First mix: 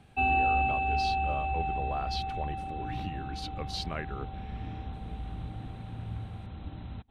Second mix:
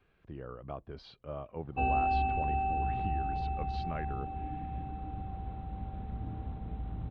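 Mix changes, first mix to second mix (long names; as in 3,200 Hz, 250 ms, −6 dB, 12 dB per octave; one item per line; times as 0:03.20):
background: entry +1.60 s
master: add head-to-tape spacing loss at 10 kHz 37 dB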